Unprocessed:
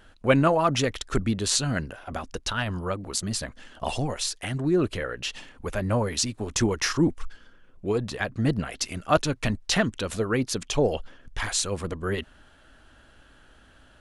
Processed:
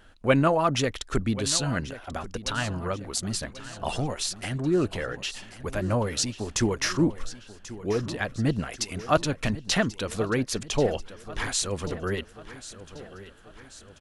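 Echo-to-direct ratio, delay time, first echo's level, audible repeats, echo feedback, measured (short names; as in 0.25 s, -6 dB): -14.0 dB, 1.087 s, -15.5 dB, 4, 51%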